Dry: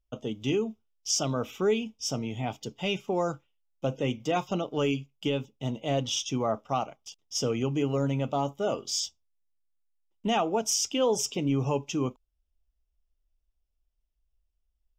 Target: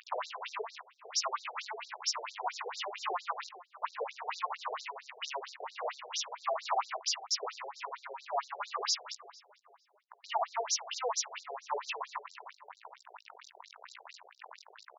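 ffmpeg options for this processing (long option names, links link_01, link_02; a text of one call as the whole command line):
ffmpeg -i in.wav -filter_complex "[0:a]aeval=exprs='val(0)+0.5*0.0211*sgn(val(0))':channel_layout=same,equalizer=frequency=400:width_type=o:width=0.67:gain=-10,equalizer=frequency=1600:width_type=o:width=0.67:gain=9,equalizer=frequency=6300:width_type=o:width=0.67:gain=-3,asplit=2[link_01][link_02];[link_02]alimiter=limit=-22.5dB:level=0:latency=1:release=24,volume=1dB[link_03];[link_01][link_03]amix=inputs=2:normalize=0,acompressor=threshold=-29dB:ratio=10,flanger=delay=15.5:depth=7:speed=1,aeval=exprs='0.0708*sin(PI/2*2.51*val(0)/0.0708)':channel_layout=same,highpass=280,equalizer=frequency=560:width_type=q:width=4:gain=-8,equalizer=frequency=1000:width_type=q:width=4:gain=9,equalizer=frequency=1600:width_type=q:width=4:gain=-7,equalizer=frequency=3300:width_type=q:width=4:gain=-10,equalizer=frequency=8500:width_type=q:width=4:gain=10,lowpass=frequency=9400:width=0.5412,lowpass=frequency=9400:width=1.3066,adynamicsmooth=sensitivity=7.5:basefreq=1400,asplit=2[link_04][link_05];[link_05]adelay=447,lowpass=frequency=1900:poles=1,volume=-16.5dB,asplit=2[link_06][link_07];[link_07]adelay=447,lowpass=frequency=1900:poles=1,volume=0.41,asplit=2[link_08][link_09];[link_09]adelay=447,lowpass=frequency=1900:poles=1,volume=0.41,asplit=2[link_10][link_11];[link_11]adelay=447,lowpass=frequency=1900:poles=1,volume=0.41[link_12];[link_06][link_08][link_10][link_12]amix=inputs=4:normalize=0[link_13];[link_04][link_13]amix=inputs=2:normalize=0,afftfilt=real='re*between(b*sr/1024,530*pow(5400/530,0.5+0.5*sin(2*PI*4.4*pts/sr))/1.41,530*pow(5400/530,0.5+0.5*sin(2*PI*4.4*pts/sr))*1.41)':imag='im*between(b*sr/1024,530*pow(5400/530,0.5+0.5*sin(2*PI*4.4*pts/sr))/1.41,530*pow(5400/530,0.5+0.5*sin(2*PI*4.4*pts/sr))*1.41)':win_size=1024:overlap=0.75" out.wav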